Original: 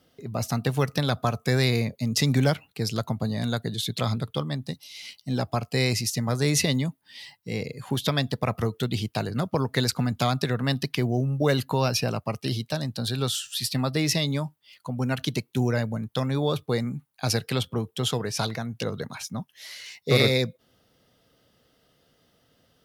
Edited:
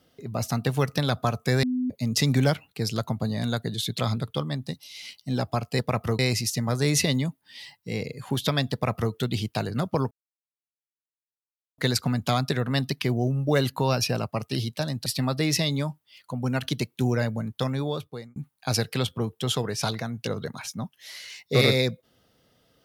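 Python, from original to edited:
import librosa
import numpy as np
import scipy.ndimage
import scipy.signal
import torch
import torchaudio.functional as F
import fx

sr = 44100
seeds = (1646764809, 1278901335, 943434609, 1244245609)

y = fx.edit(x, sr, fx.bleep(start_s=1.63, length_s=0.27, hz=252.0, db=-23.0),
    fx.duplicate(start_s=8.33, length_s=0.4, to_s=5.79),
    fx.insert_silence(at_s=9.71, length_s=1.67),
    fx.cut(start_s=12.99, length_s=0.63),
    fx.fade_out_span(start_s=16.18, length_s=0.74), tone=tone)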